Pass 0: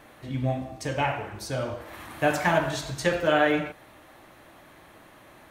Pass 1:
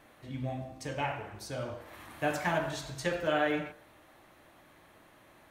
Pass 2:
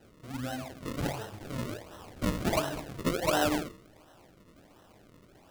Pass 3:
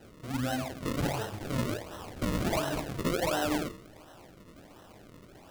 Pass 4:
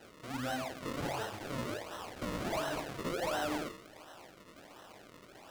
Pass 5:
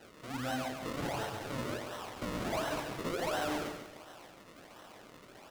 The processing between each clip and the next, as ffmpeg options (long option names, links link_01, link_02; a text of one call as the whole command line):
ffmpeg -i in.wav -af "bandreject=frequency=65.27:width_type=h:width=4,bandreject=frequency=130.54:width_type=h:width=4,bandreject=frequency=195.81:width_type=h:width=4,bandreject=frequency=261.08:width_type=h:width=4,bandreject=frequency=326.35:width_type=h:width=4,bandreject=frequency=391.62:width_type=h:width=4,bandreject=frequency=456.89:width_type=h:width=4,bandreject=frequency=522.16:width_type=h:width=4,bandreject=frequency=587.43:width_type=h:width=4,bandreject=frequency=652.7:width_type=h:width=4,bandreject=frequency=717.97:width_type=h:width=4,bandreject=frequency=783.24:width_type=h:width=4,bandreject=frequency=848.51:width_type=h:width=4,bandreject=frequency=913.78:width_type=h:width=4,bandreject=frequency=979.05:width_type=h:width=4,bandreject=frequency=1044.32:width_type=h:width=4,bandreject=frequency=1109.59:width_type=h:width=4,bandreject=frequency=1174.86:width_type=h:width=4,bandreject=frequency=1240.13:width_type=h:width=4,bandreject=frequency=1305.4:width_type=h:width=4,bandreject=frequency=1370.67:width_type=h:width=4,bandreject=frequency=1435.94:width_type=h:width=4,bandreject=frequency=1501.21:width_type=h:width=4,bandreject=frequency=1566.48:width_type=h:width=4,bandreject=frequency=1631.75:width_type=h:width=4,bandreject=frequency=1697.02:width_type=h:width=4,bandreject=frequency=1762.29:width_type=h:width=4,bandreject=frequency=1827.56:width_type=h:width=4,volume=-7dB" out.wav
ffmpeg -i in.wav -af "flanger=delay=8.9:depth=3.2:regen=-39:speed=0.8:shape=triangular,acrusher=samples=38:mix=1:aa=0.000001:lfo=1:lforange=38:lforate=1.4,volume=5.5dB" out.wav
ffmpeg -i in.wav -af "alimiter=level_in=3.5dB:limit=-24dB:level=0:latency=1:release=66,volume=-3.5dB,volume=5dB" out.wav
ffmpeg -i in.wav -filter_complex "[0:a]asplit=2[link_01][link_02];[link_02]highpass=frequency=720:poles=1,volume=14dB,asoftclip=type=tanh:threshold=-22dB[link_03];[link_01][link_03]amix=inputs=2:normalize=0,lowpass=frequency=7800:poles=1,volume=-6dB,volume=-6dB" out.wav
ffmpeg -i in.wav -af "aecho=1:1:141|282|423|564:0.422|0.143|0.0487|0.0166" out.wav